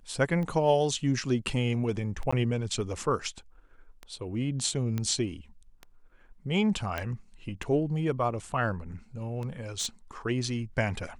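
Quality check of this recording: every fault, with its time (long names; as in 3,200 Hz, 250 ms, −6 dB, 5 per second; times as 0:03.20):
scratch tick 33 1/3 rpm −25 dBFS
0:02.31–0:02.33: drop-out 15 ms
0:04.98: click −18 dBFS
0:06.98: click −17 dBFS
0:09.79–0:09.87: clipping −26 dBFS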